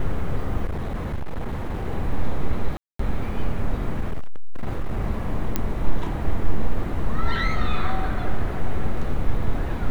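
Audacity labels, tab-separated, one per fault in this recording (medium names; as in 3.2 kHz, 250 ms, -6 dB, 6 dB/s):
0.650000	1.870000	clipped -22.5 dBFS
2.770000	2.990000	dropout 224 ms
4.010000	4.990000	clipped -19 dBFS
5.560000	5.560000	pop -8 dBFS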